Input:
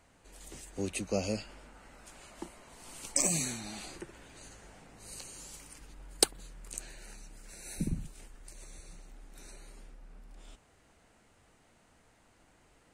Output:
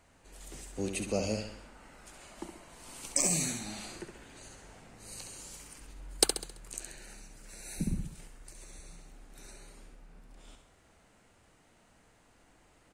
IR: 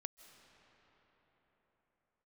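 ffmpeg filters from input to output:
-af "aecho=1:1:67|134|201|268|335:0.447|0.201|0.0905|0.0407|0.0183"

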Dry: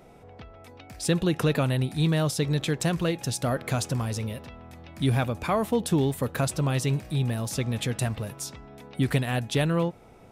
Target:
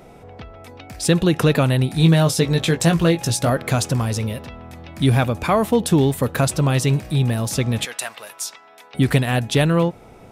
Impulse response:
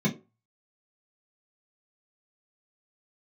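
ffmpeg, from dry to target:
-filter_complex "[0:a]asettb=1/sr,asplit=3[link_01][link_02][link_03];[link_01]atrim=end=1.924[link_04];[link_02]atrim=start=1.92:end=3.5,asetpts=PTS-STARTPTS,afade=type=in:duration=0.004:curve=qsin,afade=type=out:start_time=1.576:duration=0.004:curve=qsin,asplit=2[link_05][link_06];[link_06]adelay=18,volume=-6dB[link_07];[link_05][link_07]amix=inputs=2:normalize=0,atrim=end_sample=69678[link_08];[link_03]atrim=start=3.496[link_09];[link_04][link_08]acrossfade=duration=0.004:curve1=hsin:curve2=qsin[link_10];[link_10][link_09]acrossfade=duration=0.004:curve1=qsin:curve2=hsin,asettb=1/sr,asplit=3[link_11][link_12][link_13];[link_11]atrim=end=7.854[link_14];[link_12]atrim=start=7.85:end=8.94,asetpts=PTS-STARTPTS,afade=type=in:duration=0.004:curve=qsin,afade=type=out:start_time=1.086:duration=0.004:curve=qsin,highpass=900[link_15];[link_13]atrim=start=8.936[link_16];[link_14][link_15]acrossfade=duration=0.004:curve1=hsin:curve2=qsin[link_17];[link_17][link_16]acrossfade=duration=0.004:curve1=qsin:curve2=hsin,volume=7.5dB"

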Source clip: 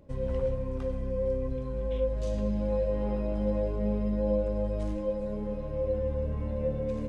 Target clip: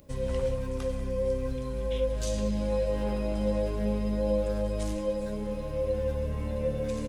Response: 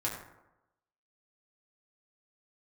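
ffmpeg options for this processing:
-filter_complex "[0:a]asplit=2[link_01][link_02];[link_02]adelay=190,highpass=300,lowpass=3400,asoftclip=type=hard:threshold=-27.5dB,volume=-13dB[link_03];[link_01][link_03]amix=inputs=2:normalize=0,crystalizer=i=6:c=0"

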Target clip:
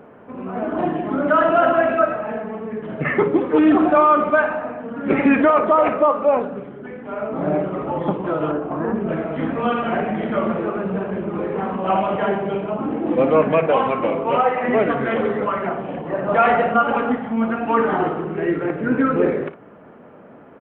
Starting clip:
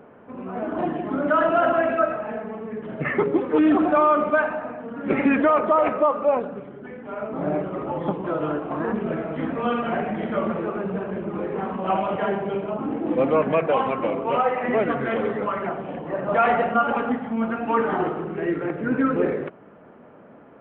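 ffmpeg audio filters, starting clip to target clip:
ffmpeg -i in.wav -filter_complex "[0:a]asettb=1/sr,asplit=3[link_01][link_02][link_03];[link_01]atrim=end=8.514[link_04];[link_02]atrim=start=8.51:end=9.09,asetpts=PTS-STARTPTS,afade=type=in:duration=0.004:curve=qsin,afade=type=out:start_time=0.576:duration=0.004:curve=qsin,highshelf=frequency=2000:gain=-11[link_05];[link_03]atrim=start=9.086[link_06];[link_04][link_05]acrossfade=duration=0.004:curve1=hsin:curve2=qsin[link_07];[link_07][link_06]acrossfade=duration=0.004:curve1=qsin:curve2=hsin,aecho=1:1:32|57:0.15|0.224,volume=3.5dB" out.wav

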